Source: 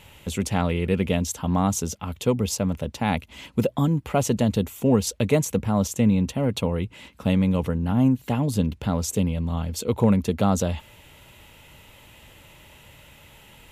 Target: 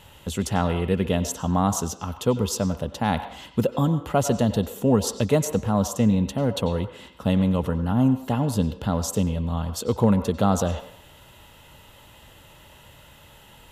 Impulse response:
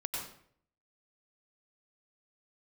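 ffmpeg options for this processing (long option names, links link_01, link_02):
-filter_complex "[0:a]equalizer=frequency=2300:width=4.3:gain=-11.5,asplit=2[link_01][link_02];[link_02]highpass=480,lowpass=4600[link_03];[1:a]atrim=start_sample=2205[link_04];[link_03][link_04]afir=irnorm=-1:irlink=0,volume=-8.5dB[link_05];[link_01][link_05]amix=inputs=2:normalize=0"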